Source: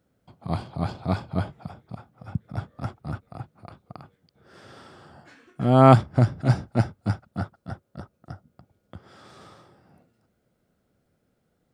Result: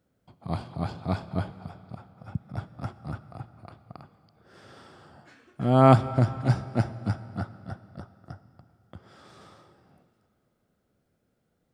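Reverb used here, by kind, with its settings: algorithmic reverb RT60 2.9 s, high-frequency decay 0.85×, pre-delay 10 ms, DRR 14 dB; trim -3 dB

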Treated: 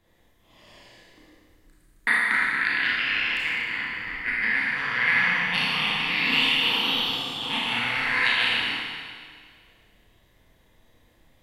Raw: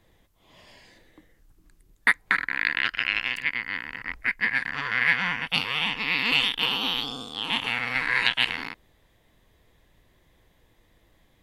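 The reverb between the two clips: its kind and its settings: Schroeder reverb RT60 1.9 s, combs from 26 ms, DRR -6 dB; trim -5 dB

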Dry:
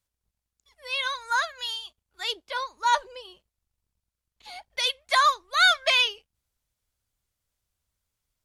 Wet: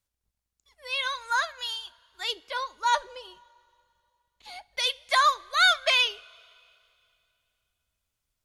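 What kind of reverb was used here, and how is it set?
two-slope reverb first 0.34 s, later 2.7 s, from -15 dB, DRR 18 dB; trim -1 dB

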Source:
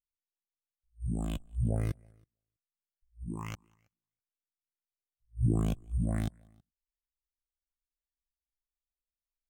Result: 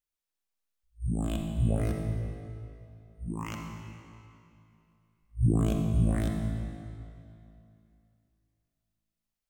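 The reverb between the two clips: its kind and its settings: algorithmic reverb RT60 2.7 s, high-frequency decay 0.9×, pre-delay 5 ms, DRR 2 dB; trim +3 dB

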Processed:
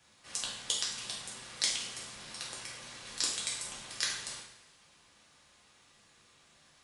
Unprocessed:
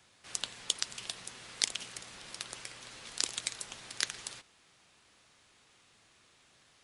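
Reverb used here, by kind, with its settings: two-slope reverb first 0.58 s, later 1.8 s, from -18 dB, DRR -4.5 dB; trim -4.5 dB

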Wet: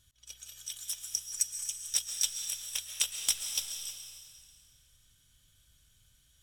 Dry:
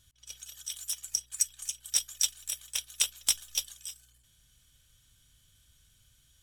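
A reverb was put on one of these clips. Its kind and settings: algorithmic reverb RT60 2.1 s, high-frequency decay 1×, pre-delay 95 ms, DRR 5.5 dB; trim -2.5 dB

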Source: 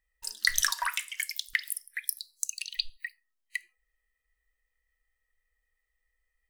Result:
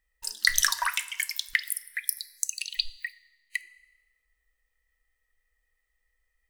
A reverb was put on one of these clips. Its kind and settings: FDN reverb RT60 1.3 s, low-frequency decay 1.3×, high-frequency decay 0.85×, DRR 16.5 dB; trim +3 dB

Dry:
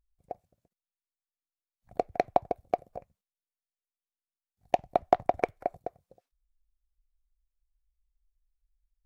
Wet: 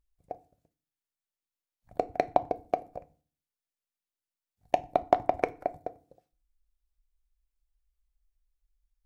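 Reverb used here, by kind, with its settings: FDN reverb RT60 0.39 s, low-frequency decay 1.5×, high-frequency decay 0.8×, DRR 13 dB

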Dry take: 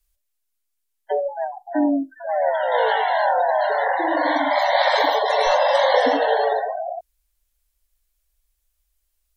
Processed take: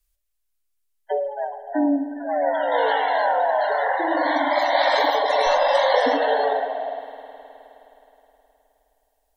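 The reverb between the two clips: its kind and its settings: spring tank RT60 3.5 s, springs 52 ms, chirp 60 ms, DRR 10 dB; trim -1.5 dB

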